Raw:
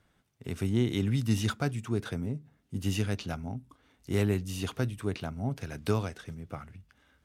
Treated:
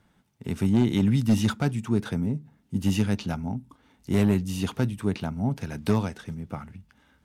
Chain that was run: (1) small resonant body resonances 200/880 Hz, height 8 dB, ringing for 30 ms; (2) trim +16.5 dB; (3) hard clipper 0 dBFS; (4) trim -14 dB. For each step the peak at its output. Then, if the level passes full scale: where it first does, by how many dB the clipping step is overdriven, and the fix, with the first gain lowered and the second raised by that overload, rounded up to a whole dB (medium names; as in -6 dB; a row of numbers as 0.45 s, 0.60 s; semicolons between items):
-11.0 dBFS, +5.5 dBFS, 0.0 dBFS, -14.0 dBFS; step 2, 5.5 dB; step 2 +10.5 dB, step 4 -8 dB